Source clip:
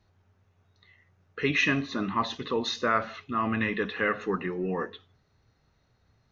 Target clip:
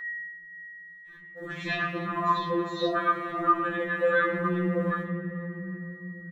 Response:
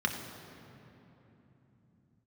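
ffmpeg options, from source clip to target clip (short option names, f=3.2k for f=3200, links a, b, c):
-filter_complex "[0:a]aeval=exprs='val(0)+0.5*0.0178*sgn(val(0))':c=same,acrossover=split=3500[a][b];[b]acompressor=threshold=-46dB:ratio=4:attack=1:release=60[c];[a][c]amix=inputs=2:normalize=0,afwtdn=0.0126,acrossover=split=810|5700[d][e][f];[f]adelay=30[g];[e]adelay=120[h];[d][h][g]amix=inputs=3:normalize=0,agate=range=-23dB:threshold=-39dB:ratio=16:detection=peak,aeval=exprs='val(0)+0.0158*sin(2*PI*1900*n/s)':c=same,asplit=2[i][j];[1:a]atrim=start_sample=2205,lowpass=3.9k[k];[j][k]afir=irnorm=-1:irlink=0,volume=-6.5dB[l];[i][l]amix=inputs=2:normalize=0,afftfilt=real='re*2.83*eq(mod(b,8),0)':imag='im*2.83*eq(mod(b,8),0)':win_size=2048:overlap=0.75"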